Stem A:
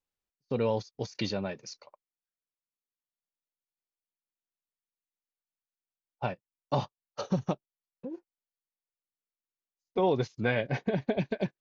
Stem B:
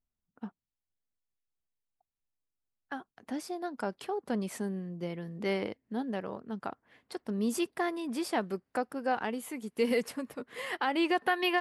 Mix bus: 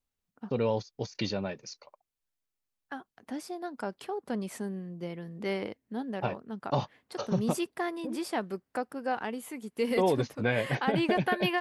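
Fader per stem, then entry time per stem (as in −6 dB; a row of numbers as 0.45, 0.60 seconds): 0.0, −1.0 decibels; 0.00, 0.00 seconds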